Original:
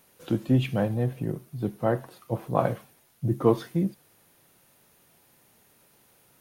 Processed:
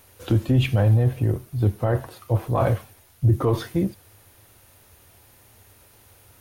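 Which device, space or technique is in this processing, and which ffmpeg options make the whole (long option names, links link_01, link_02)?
car stereo with a boomy subwoofer: -af "lowshelf=frequency=120:width_type=q:width=3:gain=9,alimiter=limit=-18dB:level=0:latency=1:release=13,volume=7dB"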